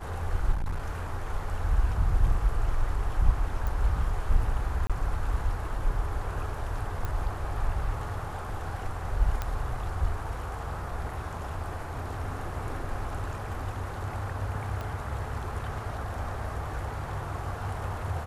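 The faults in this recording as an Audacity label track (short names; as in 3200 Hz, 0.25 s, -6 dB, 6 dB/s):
0.520000	0.910000	clipped -26 dBFS
3.670000	3.670000	pop
4.870000	4.900000	gap 26 ms
7.050000	7.050000	pop -19 dBFS
9.420000	9.420000	pop -17 dBFS
14.810000	14.810000	pop -23 dBFS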